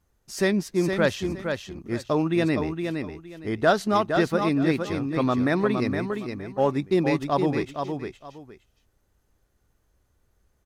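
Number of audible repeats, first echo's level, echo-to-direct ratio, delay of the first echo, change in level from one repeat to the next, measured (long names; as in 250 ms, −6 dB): 2, −6.0 dB, −6.0 dB, 464 ms, −13.0 dB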